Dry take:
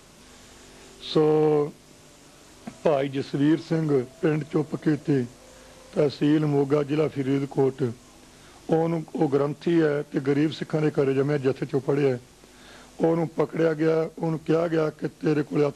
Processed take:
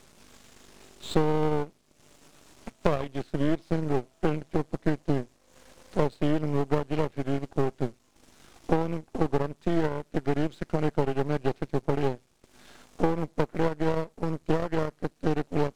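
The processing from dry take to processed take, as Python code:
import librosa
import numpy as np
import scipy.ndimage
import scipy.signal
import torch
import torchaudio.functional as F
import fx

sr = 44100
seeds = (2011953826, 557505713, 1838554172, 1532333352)

y = fx.transient(x, sr, attack_db=3, sustain_db=-10)
y = np.maximum(y, 0.0)
y = y * librosa.db_to_amplitude(-1.5)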